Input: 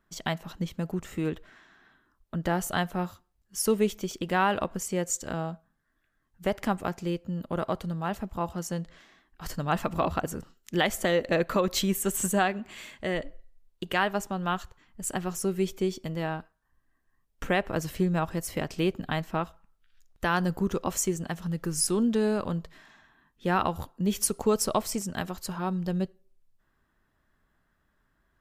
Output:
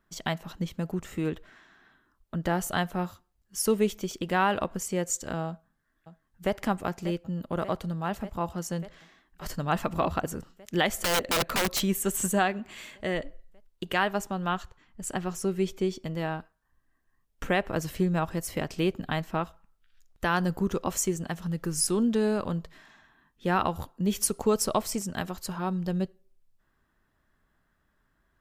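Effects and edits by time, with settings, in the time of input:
5.47–6.58 s: echo throw 590 ms, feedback 80%, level -13 dB
10.87–11.80 s: integer overflow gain 19.5 dB
14.48–16.15 s: treble shelf 10 kHz -8.5 dB

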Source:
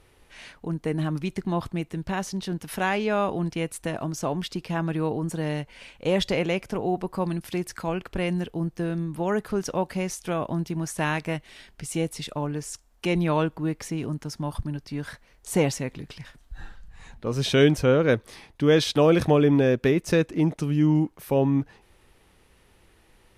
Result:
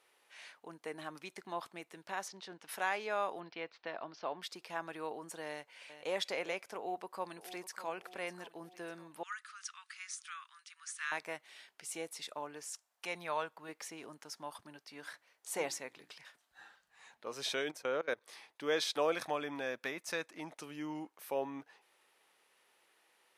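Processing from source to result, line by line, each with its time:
2.28–2.69 s: distance through air 93 m
3.40–4.42 s: steep low-pass 4.8 kHz 48 dB/octave
5.48–6.12 s: echo throw 410 ms, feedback 15%, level -11.5 dB
6.77–7.87 s: echo throw 600 ms, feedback 55%, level -14 dB
9.23–11.12 s: Chebyshev band-pass 1.2–9.6 kHz, order 5
12.73–13.69 s: peaking EQ 320 Hz -8 dB
14.82–16.12 s: hum notches 60/120/180/240/300/360 Hz
17.54–18.28 s: level held to a coarse grid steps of 20 dB
19.12–20.57 s: peaking EQ 410 Hz -8.5 dB 0.67 oct
whole clip: dynamic bell 2.9 kHz, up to -6 dB, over -50 dBFS, Q 5.2; high-pass 630 Hz 12 dB/octave; trim -7.5 dB

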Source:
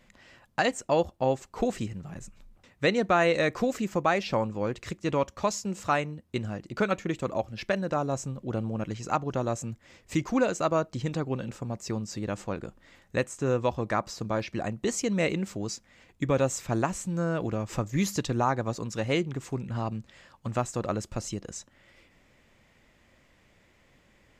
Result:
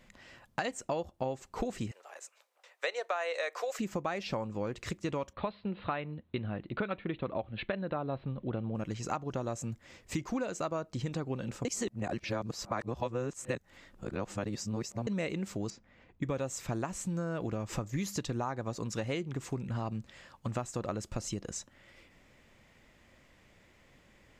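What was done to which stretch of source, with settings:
1.91–3.79 s: steep high-pass 490 Hz
5.33–8.75 s: steep low-pass 4.1 kHz 96 dB/octave
11.65–15.07 s: reverse
15.70–16.23 s: tape spacing loss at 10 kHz 27 dB
whole clip: compression 6:1, threshold -31 dBFS

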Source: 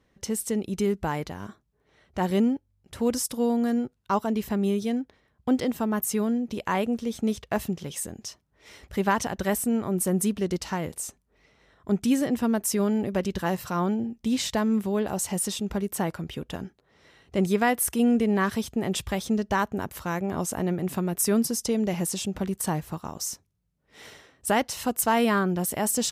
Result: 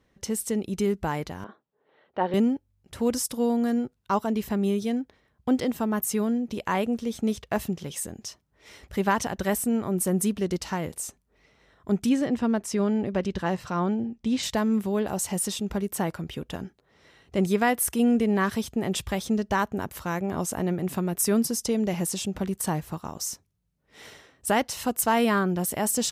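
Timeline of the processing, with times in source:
1.44–2.34 s: cabinet simulation 280–3300 Hz, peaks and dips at 510 Hz +6 dB, 860 Hz +4 dB, 2.3 kHz -6 dB
12.09–14.43 s: distance through air 70 m

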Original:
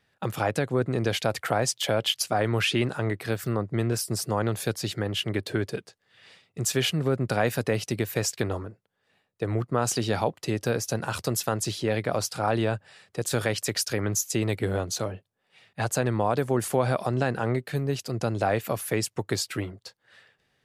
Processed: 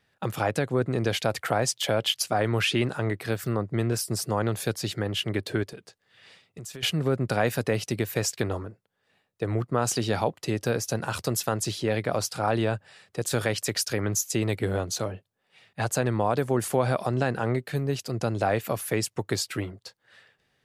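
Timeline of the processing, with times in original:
5.63–6.83 s: compression, threshold -37 dBFS

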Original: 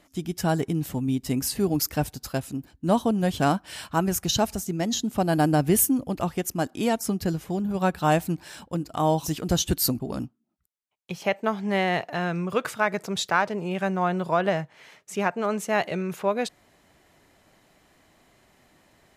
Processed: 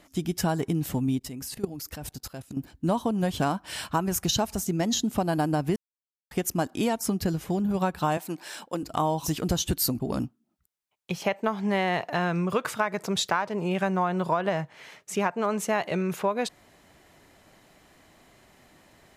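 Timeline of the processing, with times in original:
1.19–2.57 s: level held to a coarse grid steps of 20 dB
5.76–6.31 s: mute
8.17–8.83 s: high-pass 340 Hz
whole clip: dynamic bell 1 kHz, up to +5 dB, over -41 dBFS, Q 3.5; compression, threshold -25 dBFS; trim +3 dB

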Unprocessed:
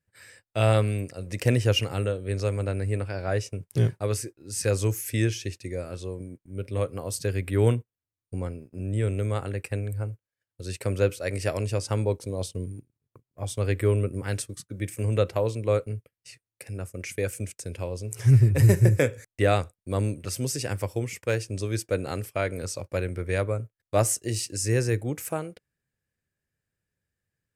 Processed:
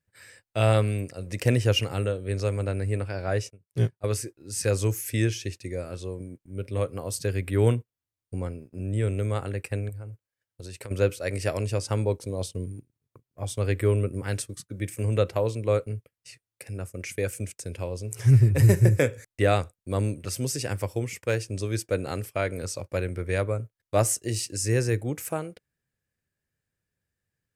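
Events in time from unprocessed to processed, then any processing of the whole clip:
3.50–4.04 s: upward expansion 2.5:1, over -35 dBFS
9.89–10.91 s: compression 10:1, threshold -35 dBFS

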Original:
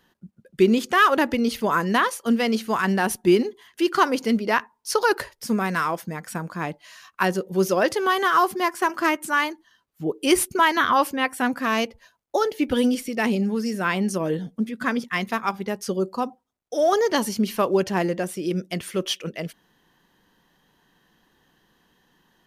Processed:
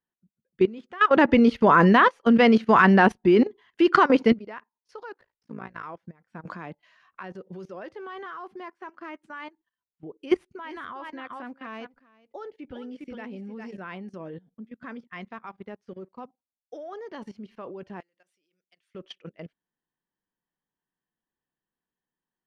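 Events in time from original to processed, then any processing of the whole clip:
1.11–4.32 s: gain +11.5 dB
5.12–5.84 s: AM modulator 56 Hz, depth 100%
6.45–8.26 s: three bands compressed up and down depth 100%
10.23–13.76 s: delay 404 ms -9 dB
15.50–16.25 s: companding laws mixed up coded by A
18.00–18.95 s: differentiator
whole clip: low-pass 2.6 kHz 12 dB/octave; level held to a coarse grid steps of 15 dB; upward expansion 1.5:1, over -51 dBFS

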